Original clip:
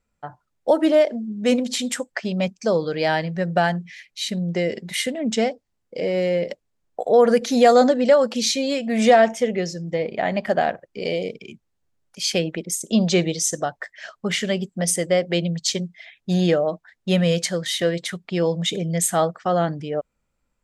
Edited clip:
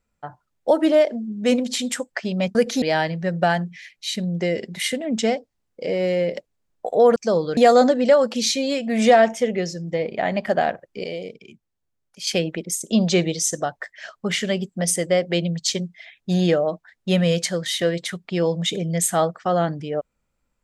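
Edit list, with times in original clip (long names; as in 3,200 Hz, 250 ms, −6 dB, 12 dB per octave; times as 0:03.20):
0:02.55–0:02.96: swap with 0:07.30–0:07.57
0:11.04–0:12.27: clip gain −6 dB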